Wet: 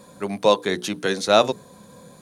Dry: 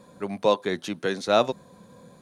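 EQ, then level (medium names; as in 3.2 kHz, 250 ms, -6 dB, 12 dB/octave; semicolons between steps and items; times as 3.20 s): treble shelf 5 kHz +8.5 dB; hum notches 60/120/180/240/300/360/420/480 Hz; +4.0 dB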